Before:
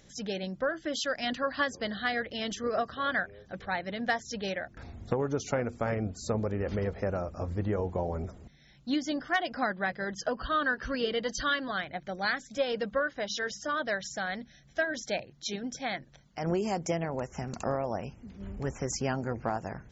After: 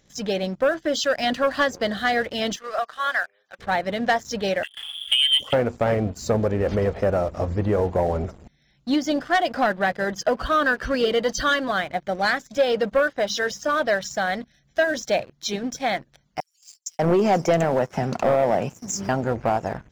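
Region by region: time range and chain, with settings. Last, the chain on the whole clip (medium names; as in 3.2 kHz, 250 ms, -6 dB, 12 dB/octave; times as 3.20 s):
2.56–3.59 s: high-pass 1 kHz + treble shelf 5.8 kHz -9 dB
4.63–5.53 s: peaking EQ 280 Hz +7.5 dB 0.95 oct + comb 3.5 ms, depth 31% + frequency inversion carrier 3.4 kHz
16.40–19.09 s: high-pass 110 Hz 24 dB/octave + waveshaping leveller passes 1 + bands offset in time highs, lows 590 ms, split 5.6 kHz
whole clip: dynamic bell 630 Hz, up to +5 dB, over -43 dBFS, Q 1.2; waveshaping leveller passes 2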